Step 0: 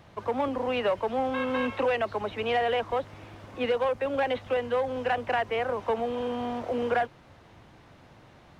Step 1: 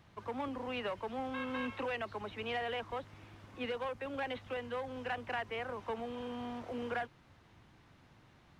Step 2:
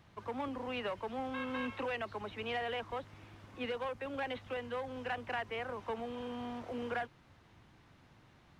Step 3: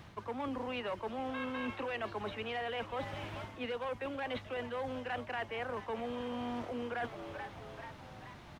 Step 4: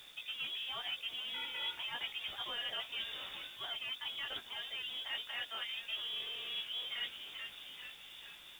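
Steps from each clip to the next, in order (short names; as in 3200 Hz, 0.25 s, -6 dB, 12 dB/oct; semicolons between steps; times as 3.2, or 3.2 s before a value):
bell 580 Hz -6.5 dB 1.1 oct; gain -7.5 dB
nothing audible
frequency-shifting echo 0.435 s, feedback 57%, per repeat +93 Hz, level -17.5 dB; reverse; compressor 6:1, threshold -46 dBFS, peak gain reduction 13 dB; reverse; gain +10 dB
chorus 1.8 Hz, delay 16 ms, depth 2.9 ms; inverted band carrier 3600 Hz; bit-crush 10-bit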